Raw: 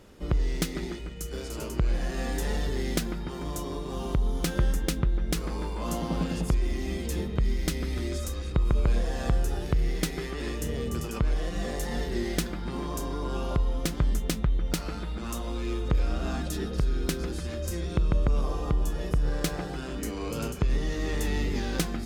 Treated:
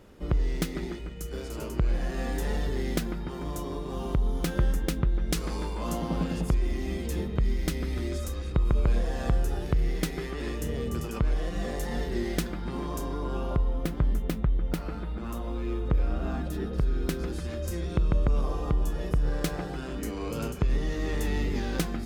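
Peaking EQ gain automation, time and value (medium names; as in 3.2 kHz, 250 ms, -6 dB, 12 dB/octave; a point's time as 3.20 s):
peaking EQ 6.5 kHz 2.3 oct
5.01 s -5 dB
5.53 s +5 dB
6.00 s -4 dB
13.00 s -4 dB
13.73 s -13 dB
16.53 s -13 dB
17.36 s -4 dB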